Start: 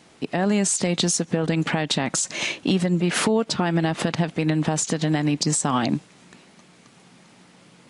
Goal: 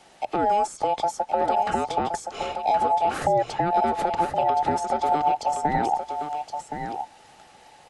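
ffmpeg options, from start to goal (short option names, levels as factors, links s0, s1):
-filter_complex "[0:a]afftfilt=real='real(if(between(b,1,1008),(2*floor((b-1)/48)+1)*48-b,b),0)':imag='imag(if(between(b,1,1008),(2*floor((b-1)/48)+1)*48-b,b),0)*if(between(b,1,1008),-1,1)':win_size=2048:overlap=0.75,acrossover=split=230|1200[s0][s1][s2];[s1]crystalizer=i=5:c=0[s3];[s2]acompressor=threshold=0.0112:ratio=6[s4];[s0][s3][s4]amix=inputs=3:normalize=0,bandreject=f=60:t=h:w=6,bandreject=f=120:t=h:w=6,aecho=1:1:1070:0.422,volume=0.891"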